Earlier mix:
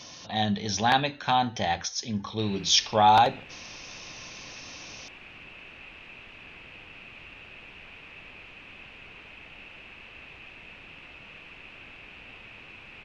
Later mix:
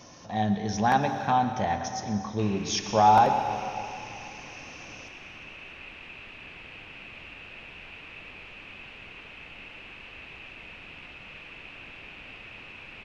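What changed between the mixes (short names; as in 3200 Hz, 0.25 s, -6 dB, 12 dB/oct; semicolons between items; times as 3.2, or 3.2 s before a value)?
speech: add bell 3700 Hz -14.5 dB 1.5 oct; reverb: on, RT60 2.5 s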